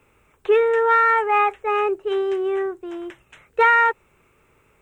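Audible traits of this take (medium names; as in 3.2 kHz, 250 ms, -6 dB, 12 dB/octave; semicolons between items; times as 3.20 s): noise floor -61 dBFS; spectral tilt -5.5 dB/octave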